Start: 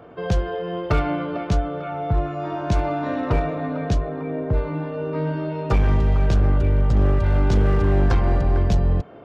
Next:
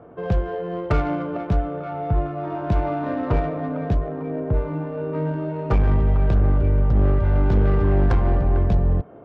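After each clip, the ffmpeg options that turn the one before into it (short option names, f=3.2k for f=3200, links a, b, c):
-af "adynamicsmooth=sensitivity=1:basefreq=1.5k"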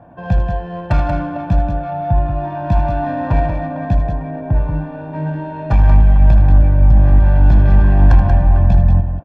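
-filter_complex "[0:a]aecho=1:1:1.2:0.92,asplit=2[a][b];[b]aecho=0:1:78.72|183.7:0.282|0.447[c];[a][c]amix=inputs=2:normalize=0,volume=1dB"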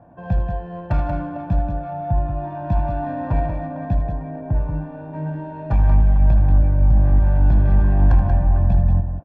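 -af "highshelf=f=2.1k:g=-9,volume=-5dB"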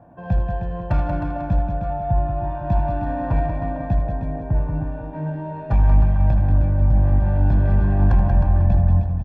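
-af "aecho=1:1:311:0.376"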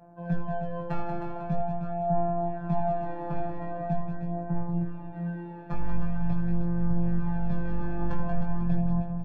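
-af "afftfilt=real='hypot(re,im)*cos(PI*b)':imag='0':win_size=1024:overlap=0.75,flanger=delay=17.5:depth=2.3:speed=0.44"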